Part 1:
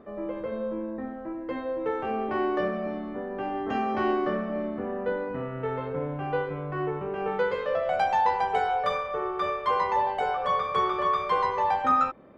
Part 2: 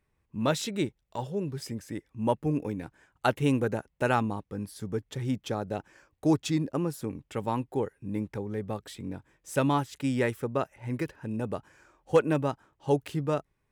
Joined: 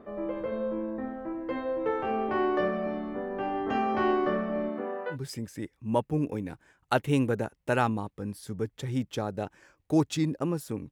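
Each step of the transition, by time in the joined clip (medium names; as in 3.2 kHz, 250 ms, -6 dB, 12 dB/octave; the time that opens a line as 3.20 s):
part 1
4.68–5.17 s: high-pass 160 Hz -> 920 Hz
5.13 s: go over to part 2 from 1.46 s, crossfade 0.08 s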